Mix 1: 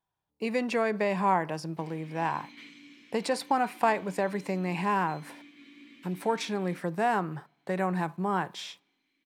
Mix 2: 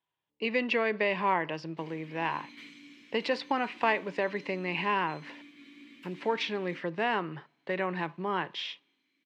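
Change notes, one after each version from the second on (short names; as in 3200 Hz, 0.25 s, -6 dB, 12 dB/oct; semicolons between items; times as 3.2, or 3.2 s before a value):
speech: add speaker cabinet 160–4700 Hz, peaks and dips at 190 Hz -6 dB, 750 Hz -7 dB, 1400 Hz -3 dB, 2000 Hz +5 dB, 2900 Hz +9 dB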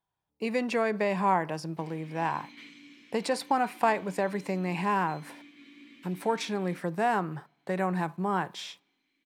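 speech: remove speaker cabinet 160–4700 Hz, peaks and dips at 190 Hz -6 dB, 750 Hz -7 dB, 1400 Hz -3 dB, 2000 Hz +5 dB, 2900 Hz +9 dB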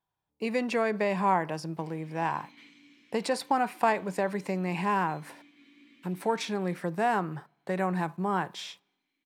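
background -5.5 dB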